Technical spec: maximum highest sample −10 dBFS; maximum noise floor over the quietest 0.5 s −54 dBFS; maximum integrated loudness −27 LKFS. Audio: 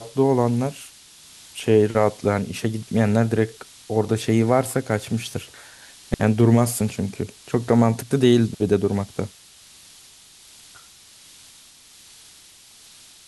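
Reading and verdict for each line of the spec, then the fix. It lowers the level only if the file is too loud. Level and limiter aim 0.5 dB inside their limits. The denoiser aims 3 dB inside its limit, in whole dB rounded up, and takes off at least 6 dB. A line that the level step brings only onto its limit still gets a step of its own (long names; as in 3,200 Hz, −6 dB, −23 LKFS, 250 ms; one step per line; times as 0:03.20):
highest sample −4.5 dBFS: out of spec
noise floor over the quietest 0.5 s −49 dBFS: out of spec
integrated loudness −21.5 LKFS: out of spec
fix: level −6 dB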